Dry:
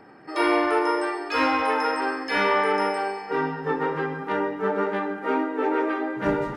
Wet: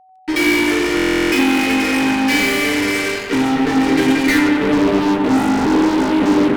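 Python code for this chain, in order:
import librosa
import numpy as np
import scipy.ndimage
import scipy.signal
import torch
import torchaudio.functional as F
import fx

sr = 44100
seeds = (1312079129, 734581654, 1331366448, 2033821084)

p1 = fx.low_shelf(x, sr, hz=170.0, db=7.0, at=(5.32, 6.03))
p2 = fx.over_compress(p1, sr, threshold_db=-26.0, ratio=-1.0)
p3 = p1 + (p2 * librosa.db_to_amplitude(1.0))
p4 = fx.filter_sweep_lowpass(p3, sr, from_hz=7900.0, to_hz=710.0, start_s=3.75, end_s=4.74, q=6.3)
p5 = fx.vowel_filter(p4, sr, vowel='i')
p6 = fx.fuzz(p5, sr, gain_db=38.0, gate_db=-43.0)
p7 = p6 + 10.0 ** (-47.0 / 20.0) * np.sin(2.0 * np.pi * 750.0 * np.arange(len(p6)) / sr)
p8 = p7 + fx.echo_bbd(p7, sr, ms=93, stages=2048, feedback_pct=74, wet_db=-6.5, dry=0)
y = fx.buffer_glitch(p8, sr, at_s=(0.95,), block=1024, repeats=15)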